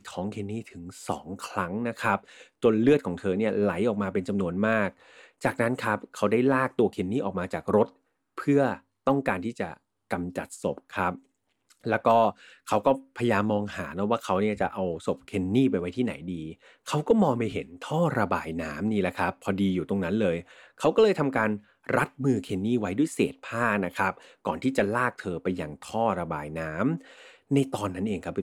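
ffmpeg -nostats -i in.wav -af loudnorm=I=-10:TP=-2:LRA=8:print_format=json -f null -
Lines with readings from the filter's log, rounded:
"input_i" : "-27.6",
"input_tp" : "-11.0",
"input_lra" : "3.3",
"input_thresh" : "-37.8",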